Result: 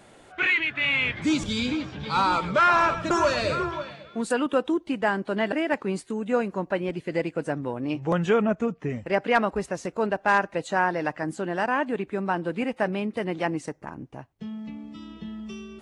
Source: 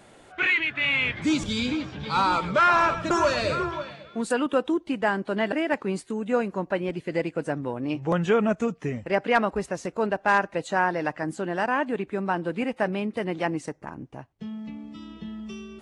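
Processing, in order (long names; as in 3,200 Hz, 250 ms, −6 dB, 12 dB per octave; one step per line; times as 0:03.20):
0:08.42–0:08.90: low-pass filter 2,200 Hz 6 dB per octave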